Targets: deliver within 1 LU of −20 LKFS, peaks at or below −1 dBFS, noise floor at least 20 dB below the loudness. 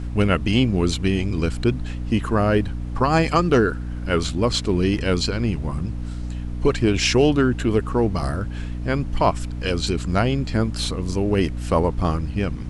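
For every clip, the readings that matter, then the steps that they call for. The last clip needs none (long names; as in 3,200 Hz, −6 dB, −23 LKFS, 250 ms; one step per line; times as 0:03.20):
mains hum 60 Hz; hum harmonics up to 300 Hz; level of the hum −26 dBFS; background noise floor −29 dBFS; target noise floor −42 dBFS; integrated loudness −22.0 LKFS; sample peak −4.5 dBFS; target loudness −20.0 LKFS
→ mains-hum notches 60/120/180/240/300 Hz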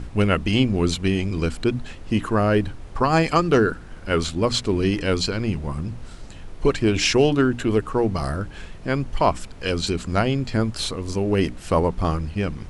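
mains hum none found; background noise floor −39 dBFS; target noise floor −43 dBFS
→ noise reduction from a noise print 6 dB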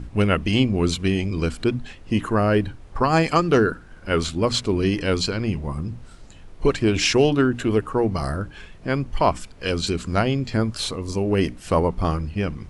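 background noise floor −44 dBFS; integrated loudness −22.5 LKFS; sample peak −5.0 dBFS; target loudness −20.0 LKFS
→ level +2.5 dB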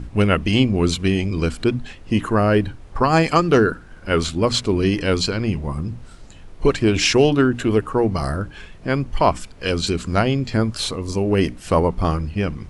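integrated loudness −20.0 LKFS; sample peak −2.5 dBFS; background noise floor −42 dBFS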